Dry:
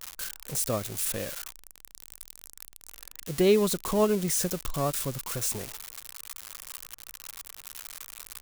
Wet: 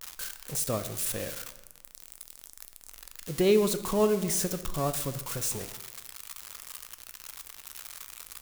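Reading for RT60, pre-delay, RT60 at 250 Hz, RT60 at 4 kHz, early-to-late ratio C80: 1.1 s, 6 ms, 1.3 s, 0.80 s, 14.0 dB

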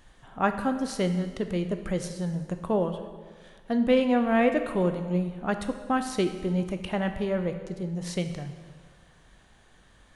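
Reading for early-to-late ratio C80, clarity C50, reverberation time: 10.0 dB, 8.5 dB, 1.6 s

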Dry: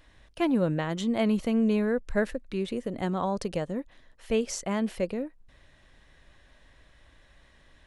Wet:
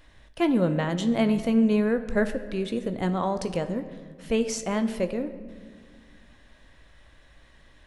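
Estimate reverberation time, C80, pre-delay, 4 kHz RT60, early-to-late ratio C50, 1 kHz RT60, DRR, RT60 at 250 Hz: 1.8 s, 13.5 dB, 17 ms, 1.0 s, 12.0 dB, 1.6 s, 9.0 dB, 2.6 s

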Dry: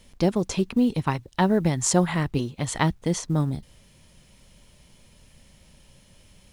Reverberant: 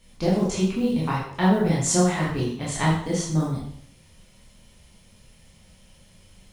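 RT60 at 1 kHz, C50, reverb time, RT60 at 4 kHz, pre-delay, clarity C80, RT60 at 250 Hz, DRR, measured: 0.60 s, 2.5 dB, 0.60 s, 0.55 s, 7 ms, 6.0 dB, 0.65 s, -7.0 dB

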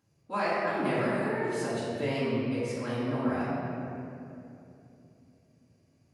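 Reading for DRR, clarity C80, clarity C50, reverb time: -11.5 dB, -1.5 dB, -3.0 dB, 2.8 s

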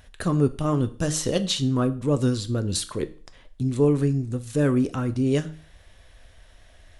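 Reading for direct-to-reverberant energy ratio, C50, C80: 10.0 dB, 17.0 dB, 21.0 dB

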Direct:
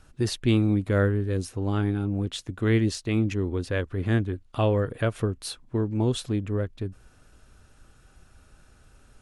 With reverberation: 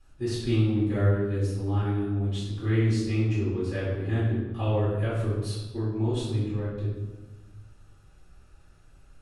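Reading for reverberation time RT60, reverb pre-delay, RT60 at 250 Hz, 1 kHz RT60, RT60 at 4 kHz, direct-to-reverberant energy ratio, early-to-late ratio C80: 1.2 s, 4 ms, 1.7 s, 1.2 s, 0.85 s, -11.0 dB, 3.0 dB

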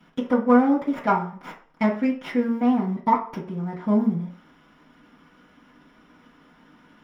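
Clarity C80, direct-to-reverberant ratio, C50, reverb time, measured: 13.5 dB, -10.0 dB, 9.0 dB, 0.45 s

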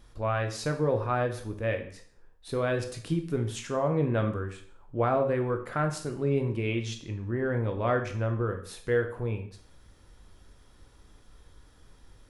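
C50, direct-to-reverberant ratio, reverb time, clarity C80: 10.0 dB, 5.0 dB, 0.55 s, 13.5 dB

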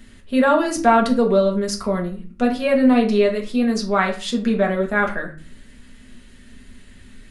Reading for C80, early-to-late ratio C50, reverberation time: 15.0 dB, 11.0 dB, 0.40 s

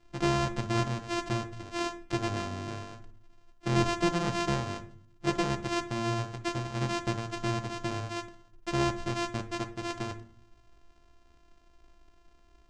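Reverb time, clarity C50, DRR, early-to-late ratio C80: 0.55 s, 14.0 dB, 7.0 dB, 18.0 dB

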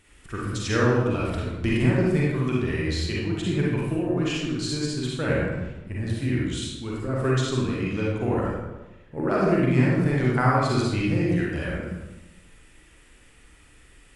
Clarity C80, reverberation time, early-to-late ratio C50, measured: 1.5 dB, 1.1 s, -2.0 dB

